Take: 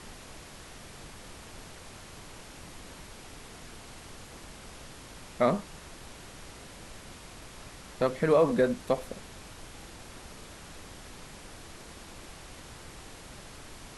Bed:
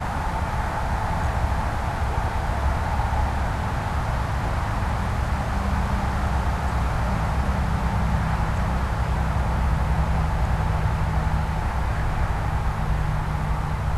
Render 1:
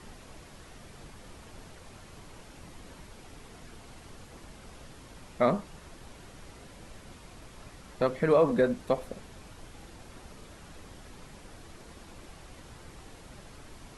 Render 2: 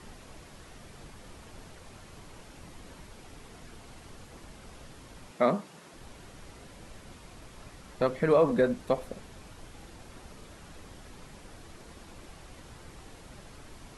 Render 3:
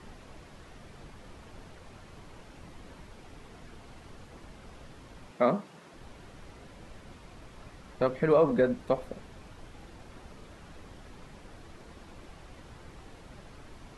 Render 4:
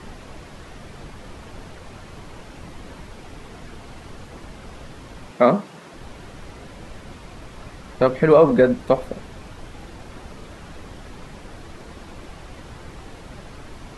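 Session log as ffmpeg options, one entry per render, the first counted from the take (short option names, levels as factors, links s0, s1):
-af "afftdn=nr=6:nf=-48"
-filter_complex "[0:a]asettb=1/sr,asplit=3[s0][s1][s2];[s0]atrim=end=5.314[s3];[s1]atrim=start=5.31:end=5.94,asetpts=PTS-STARTPTS,afade=t=in:d=0.004:c=qsin,afade=t=out:st=0.626:d=0.004:c=qsin,highpass=f=150:w=0.5412,highpass=f=150:w=1.3066[s4];[s2]atrim=start=5.936[s5];[s3][s4]acrossfade=d=0.004:c1=hsin:c2=qsin[s6];[s6][s5]acrossfade=d=0.004:c1=qsin:c2=hsin"
-af "lowpass=f=3600:p=1"
-af "volume=3.16"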